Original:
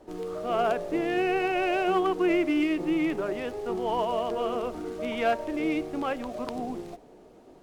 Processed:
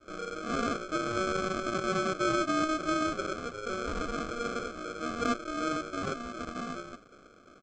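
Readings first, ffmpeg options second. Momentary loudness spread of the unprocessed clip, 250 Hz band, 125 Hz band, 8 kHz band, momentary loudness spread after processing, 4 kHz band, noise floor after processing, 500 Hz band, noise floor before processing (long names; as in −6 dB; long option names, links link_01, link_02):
10 LU, −6.0 dB, +1.5 dB, can't be measured, 10 LU, −0.5 dB, −57 dBFS, −7.0 dB, −52 dBFS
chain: -af "adynamicequalizer=threshold=0.0112:dfrequency=690:dqfactor=1.6:tfrequency=690:tqfactor=1.6:attack=5:release=100:ratio=0.375:range=3:mode=cutabove:tftype=bell,aresample=16000,acrusher=samples=17:mix=1:aa=0.000001,aresample=44100,asoftclip=type=hard:threshold=-15.5dB,equalizer=frequency=1200:width_type=o:width=0.62:gain=12,volume=-5.5dB"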